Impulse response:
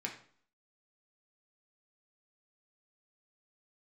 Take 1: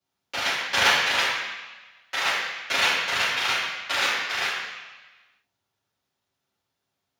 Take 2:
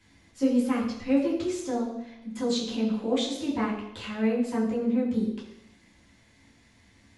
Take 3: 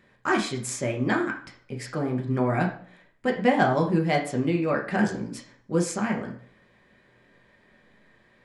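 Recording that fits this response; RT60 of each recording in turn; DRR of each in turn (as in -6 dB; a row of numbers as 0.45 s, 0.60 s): 3; 1.2 s, 0.85 s, 0.50 s; -12.0 dB, -7.5 dB, 0.0 dB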